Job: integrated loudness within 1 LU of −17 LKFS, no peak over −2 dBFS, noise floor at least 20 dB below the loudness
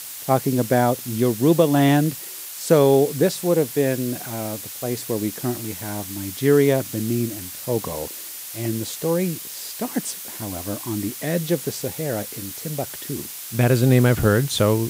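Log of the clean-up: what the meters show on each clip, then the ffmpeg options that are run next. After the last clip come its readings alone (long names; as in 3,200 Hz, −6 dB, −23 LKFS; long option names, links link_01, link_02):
background noise floor −35 dBFS; target noise floor −42 dBFS; integrated loudness −22.0 LKFS; sample peak −3.0 dBFS; target loudness −17.0 LKFS
→ -af "afftdn=noise_reduction=7:noise_floor=-35"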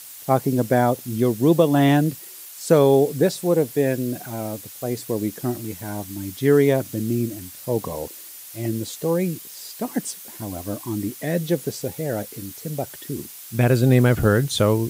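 background noise floor −40 dBFS; target noise floor −42 dBFS
→ -af "afftdn=noise_reduction=6:noise_floor=-40"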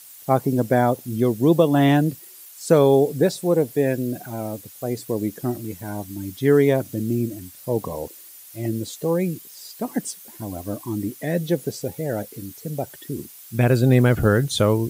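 background noise floor −44 dBFS; integrated loudness −22.0 LKFS; sample peak −3.5 dBFS; target loudness −17.0 LKFS
→ -af "volume=5dB,alimiter=limit=-2dB:level=0:latency=1"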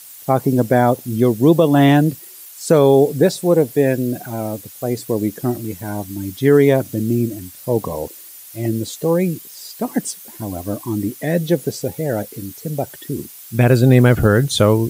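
integrated loudness −17.5 LKFS; sample peak −2.0 dBFS; background noise floor −39 dBFS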